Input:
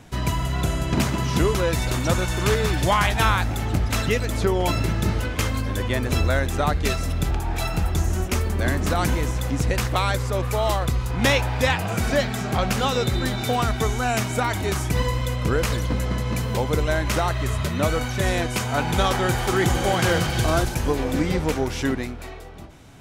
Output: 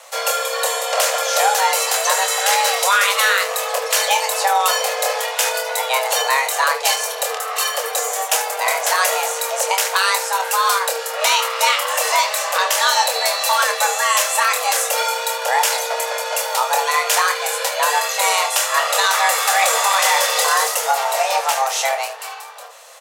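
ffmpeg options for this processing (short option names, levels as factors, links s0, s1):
-filter_complex "[0:a]highpass=f=120:p=1,bass=f=250:g=-7,treble=f=4000:g=8,afreqshift=400,asplit=2[s0][s1];[s1]aecho=0:1:26|75:0.501|0.2[s2];[s0][s2]amix=inputs=2:normalize=0,alimiter=level_in=3.16:limit=0.891:release=50:level=0:latency=1,volume=0.631"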